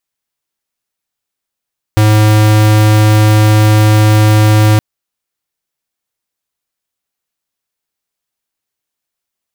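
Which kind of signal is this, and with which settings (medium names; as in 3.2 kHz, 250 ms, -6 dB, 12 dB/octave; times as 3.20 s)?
tone square 107 Hz -7 dBFS 2.82 s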